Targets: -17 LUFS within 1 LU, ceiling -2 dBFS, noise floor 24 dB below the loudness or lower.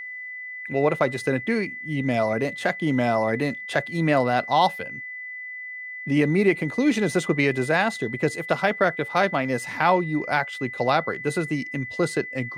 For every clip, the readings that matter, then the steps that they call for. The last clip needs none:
steady tone 2000 Hz; tone level -33 dBFS; loudness -24.0 LUFS; peak -6.5 dBFS; loudness target -17.0 LUFS
-> notch 2000 Hz, Q 30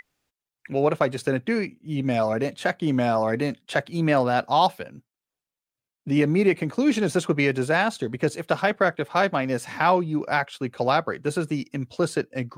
steady tone none; loudness -24.0 LUFS; peak -7.0 dBFS; loudness target -17.0 LUFS
-> gain +7 dB; limiter -2 dBFS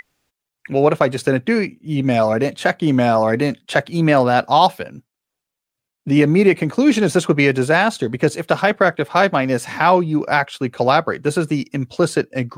loudness -17.0 LUFS; peak -2.0 dBFS; noise floor -83 dBFS

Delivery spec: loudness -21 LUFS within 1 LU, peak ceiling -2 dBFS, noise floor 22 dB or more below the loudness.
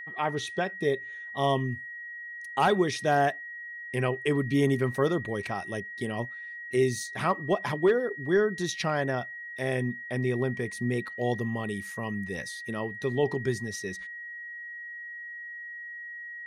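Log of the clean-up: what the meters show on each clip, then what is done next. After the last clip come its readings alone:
steady tone 1900 Hz; tone level -38 dBFS; loudness -30.0 LUFS; peak -14.0 dBFS; loudness target -21.0 LUFS
-> notch 1900 Hz, Q 30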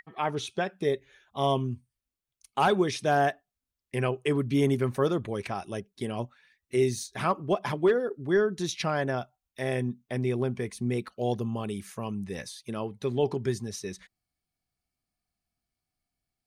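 steady tone none; loudness -29.5 LUFS; peak -14.5 dBFS; loudness target -21.0 LUFS
-> gain +8.5 dB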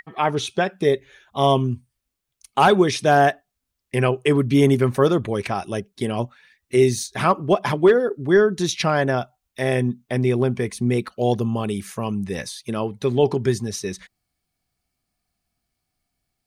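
loudness -21.0 LUFS; peak -6.0 dBFS; noise floor -80 dBFS

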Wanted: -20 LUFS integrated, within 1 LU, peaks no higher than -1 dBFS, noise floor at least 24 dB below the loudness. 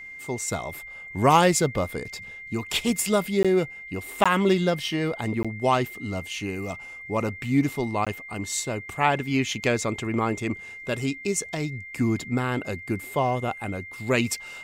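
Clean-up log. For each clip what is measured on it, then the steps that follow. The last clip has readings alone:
dropouts 4; longest dropout 16 ms; steady tone 2100 Hz; tone level -38 dBFS; loudness -26.0 LUFS; peak -6.0 dBFS; loudness target -20.0 LUFS
-> interpolate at 3.43/4.24/5.43/8.05, 16 ms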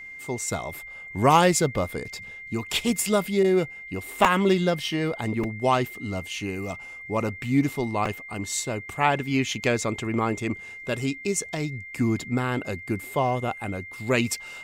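dropouts 0; steady tone 2100 Hz; tone level -38 dBFS
-> notch 2100 Hz, Q 30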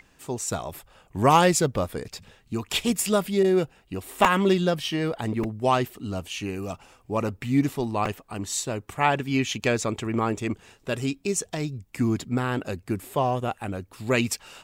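steady tone none; loudness -26.0 LUFS; peak -4.0 dBFS; loudness target -20.0 LUFS
-> gain +6 dB; limiter -1 dBFS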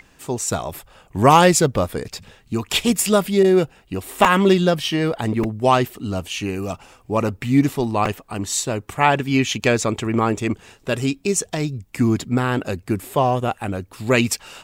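loudness -20.0 LUFS; peak -1.0 dBFS; noise floor -54 dBFS

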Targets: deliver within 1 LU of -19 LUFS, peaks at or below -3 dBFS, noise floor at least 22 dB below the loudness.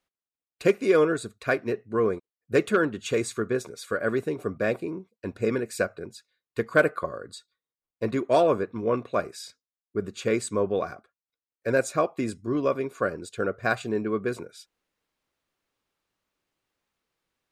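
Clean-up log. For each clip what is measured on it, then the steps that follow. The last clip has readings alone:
loudness -27.0 LUFS; peak -8.5 dBFS; loudness target -19.0 LUFS
-> gain +8 dB; limiter -3 dBFS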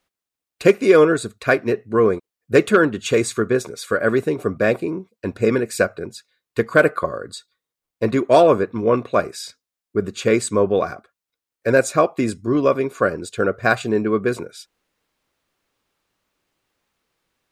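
loudness -19.0 LUFS; peak -3.0 dBFS; noise floor -87 dBFS

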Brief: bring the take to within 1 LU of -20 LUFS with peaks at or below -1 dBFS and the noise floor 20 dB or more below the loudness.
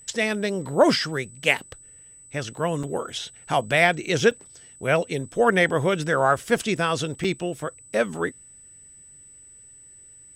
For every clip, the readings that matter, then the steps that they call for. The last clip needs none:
dropouts 3; longest dropout 4.1 ms; steady tone 8000 Hz; tone level -46 dBFS; loudness -23.5 LUFS; peak -3.5 dBFS; loudness target -20.0 LUFS
-> interpolate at 2.83/4.31/7.24, 4.1 ms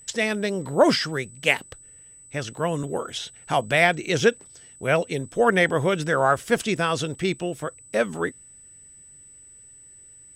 dropouts 0; steady tone 8000 Hz; tone level -46 dBFS
-> notch 8000 Hz, Q 30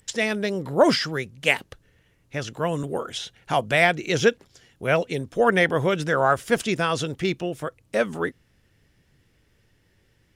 steady tone none; loudness -23.5 LUFS; peak -3.5 dBFS; loudness target -20.0 LUFS
-> gain +3.5 dB; limiter -1 dBFS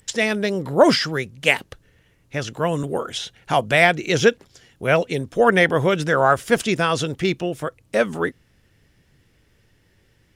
loudness -20.0 LUFS; peak -1.0 dBFS; noise floor -61 dBFS

